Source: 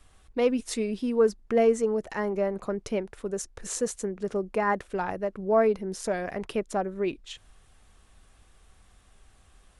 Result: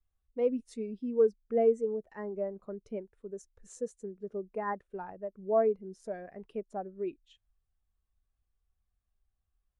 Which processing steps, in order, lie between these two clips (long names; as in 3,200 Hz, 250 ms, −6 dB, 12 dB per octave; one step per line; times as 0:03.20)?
every bin expanded away from the loudest bin 1.5 to 1
level −4 dB